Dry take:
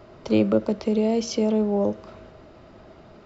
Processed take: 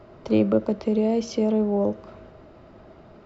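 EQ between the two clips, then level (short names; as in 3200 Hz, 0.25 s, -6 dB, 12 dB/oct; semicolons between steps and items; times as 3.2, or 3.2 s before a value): high shelf 2900 Hz -7.5 dB; 0.0 dB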